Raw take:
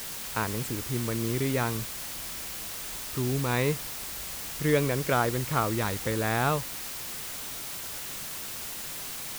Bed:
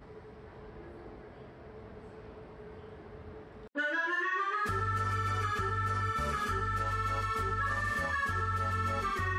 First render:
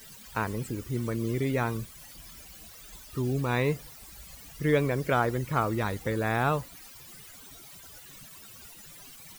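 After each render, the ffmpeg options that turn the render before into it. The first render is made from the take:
ffmpeg -i in.wav -af "afftdn=noise_reduction=16:noise_floor=-38" out.wav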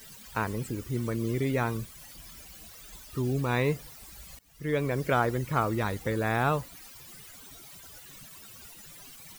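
ffmpeg -i in.wav -filter_complex "[0:a]asplit=2[link_01][link_02];[link_01]atrim=end=4.39,asetpts=PTS-STARTPTS,afade=type=out:start_time=4.386:duration=0.004:curve=hsin:silence=0.0630957[link_03];[link_02]atrim=start=4.39,asetpts=PTS-STARTPTS,afade=type=in:duration=0.61:silence=0.0630957[link_04];[link_03][link_04]concat=n=2:v=0:a=1" out.wav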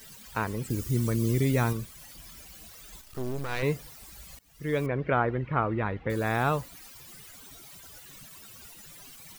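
ffmpeg -i in.wav -filter_complex "[0:a]asettb=1/sr,asplit=3[link_01][link_02][link_03];[link_01]atrim=end=0.704[link_04];[link_02]atrim=start=0.7:end=1.73,asetpts=PTS-STARTPTS,afade=type=in:duration=0.004:curve=qsin,afade=type=out:start_time=1.026:duration=0.004:curve=qsin,bass=frequency=250:gain=6,treble=frequency=4000:gain=8[link_05];[link_03]atrim=start=1.726[link_06];[link_04][link_05]acrossfade=duration=0.004:curve1=hsin:curve2=qsin[link_07];[link_07][link_06]acrossfade=duration=0.004:curve1=qsin:curve2=hsin,asettb=1/sr,asplit=3[link_08][link_09][link_10];[link_08]atrim=end=3.014[link_11];[link_09]atrim=start=3.01:end=3.63,asetpts=PTS-STARTPTS,afade=type=in:duration=0.004:curve=qsin,afade=type=out:start_time=0.616:duration=0.004:curve=qsin,aeval=exprs='max(val(0),0)':channel_layout=same[link_12];[link_10]atrim=start=3.626[link_13];[link_11][link_12]acrossfade=duration=0.004:curve1=hsin:curve2=qsin[link_14];[link_14][link_13]acrossfade=duration=0.004:curve1=qsin:curve2=hsin,asettb=1/sr,asplit=3[link_15][link_16][link_17];[link_15]atrim=end=4.864[link_18];[link_16]atrim=start=4.86:end=6.1,asetpts=PTS-STARTPTS,afade=type=in:duration=0.004:curve=qsin,afade=type=out:start_time=1.236:duration=0.004:curve=qsin,lowpass=frequency=2700:width=0.5412,lowpass=frequency=2700:width=1.3066[link_19];[link_17]atrim=start=6.096[link_20];[link_18][link_19]acrossfade=duration=0.004:curve1=hsin:curve2=qsin[link_21];[link_21][link_20]acrossfade=duration=0.004:curve1=qsin:curve2=hsin" out.wav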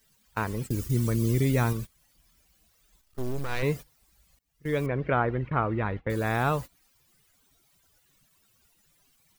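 ffmpeg -i in.wav -af "agate=range=-18dB:threshold=-35dB:ratio=16:detection=peak,lowshelf=frequency=72:gain=5.5" out.wav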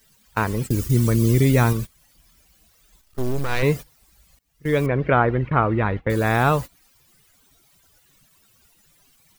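ffmpeg -i in.wav -af "volume=7.5dB" out.wav

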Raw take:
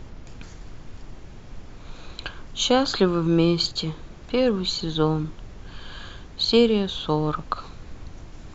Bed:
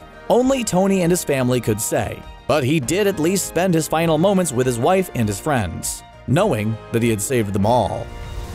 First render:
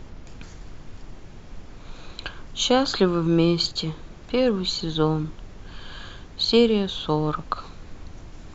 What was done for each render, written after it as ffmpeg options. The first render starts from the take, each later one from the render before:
ffmpeg -i in.wav -af "bandreject=frequency=60:width_type=h:width=4,bandreject=frequency=120:width_type=h:width=4" out.wav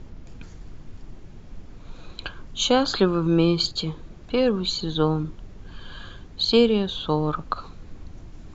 ffmpeg -i in.wav -af "afftdn=noise_reduction=6:noise_floor=-43" out.wav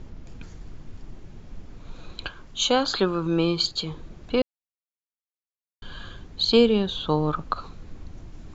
ffmpeg -i in.wav -filter_complex "[0:a]asettb=1/sr,asplit=3[link_01][link_02][link_03];[link_01]atrim=end=2.284[link_04];[link_02]atrim=start=2.28:end=3.91,asetpts=PTS-STARTPTS,afade=type=in:duration=0.004:curve=qsin,afade=type=out:start_time=1.626:duration=0.004:curve=qsin,lowshelf=frequency=340:gain=-6.5[link_05];[link_03]atrim=start=3.906[link_06];[link_04][link_05]acrossfade=duration=0.004:curve1=hsin:curve2=qsin[link_07];[link_07][link_06]acrossfade=duration=0.004:curve1=qsin:curve2=hsin,asplit=3[link_08][link_09][link_10];[link_08]atrim=end=4.42,asetpts=PTS-STARTPTS,afade=type=out:start_time=4.416:duration=0.004:curve=hsin[link_11];[link_09]atrim=start=4.42:end=5.82,asetpts=PTS-STARTPTS,volume=0[link_12];[link_10]atrim=start=5.82,asetpts=PTS-STARTPTS,afade=type=in:duration=0.004:curve=hsin[link_13];[link_11][link_12][link_13]concat=n=3:v=0:a=1" out.wav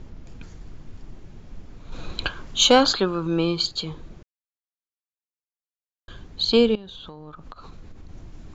ffmpeg -i in.wav -filter_complex "[0:a]asettb=1/sr,asplit=3[link_01][link_02][link_03];[link_01]atrim=end=1.924[link_04];[link_02]atrim=start=1.92:end=2.93,asetpts=PTS-STARTPTS,afade=type=in:duration=0.004:curve=qsin,afade=type=out:start_time=1.006:duration=0.004:curve=qsin,acontrast=82[link_05];[link_03]atrim=start=2.926[link_06];[link_04][link_05]acrossfade=duration=0.004:curve1=hsin:curve2=qsin[link_07];[link_07][link_06]acrossfade=duration=0.004:curve1=qsin:curve2=hsin,asettb=1/sr,asplit=3[link_08][link_09][link_10];[link_08]atrim=end=6.754[link_11];[link_09]atrim=start=6.75:end=8.09,asetpts=PTS-STARTPTS,afade=type=in:duration=0.004:curve=qsin,afade=type=out:start_time=1.336:duration=0.004:curve=qsin,acompressor=threshold=-36dB:ratio=16:attack=3.2:release=140:knee=1:detection=peak[link_12];[link_10]atrim=start=8.086[link_13];[link_11][link_12]acrossfade=duration=0.004:curve1=hsin:curve2=qsin[link_14];[link_14][link_13]acrossfade=duration=0.004:curve1=qsin:curve2=hsin,asplit=3[link_15][link_16][link_17];[link_15]atrim=end=4.23,asetpts=PTS-STARTPTS,afade=type=out:start_time=4.226:duration=0.004:curve=hsin[link_18];[link_16]atrim=start=4.23:end=6.08,asetpts=PTS-STARTPTS,volume=0[link_19];[link_17]atrim=start=6.08,asetpts=PTS-STARTPTS,afade=type=in:duration=0.004:curve=hsin[link_20];[link_18][link_19][link_20]concat=n=3:v=0:a=1" out.wav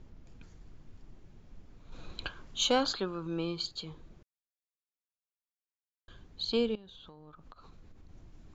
ffmpeg -i in.wav -af "volume=-12dB" out.wav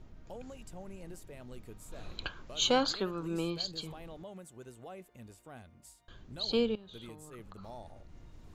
ffmpeg -i in.wav -i bed.wav -filter_complex "[1:a]volume=-31.5dB[link_01];[0:a][link_01]amix=inputs=2:normalize=0" out.wav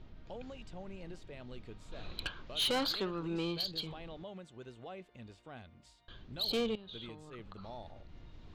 ffmpeg -i in.wav -af "lowpass=frequency=3800:width_type=q:width=1.8,asoftclip=type=tanh:threshold=-28dB" out.wav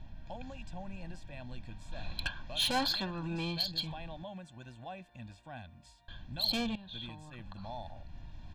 ffmpeg -i in.wav -af "aecho=1:1:1.2:0.99" out.wav

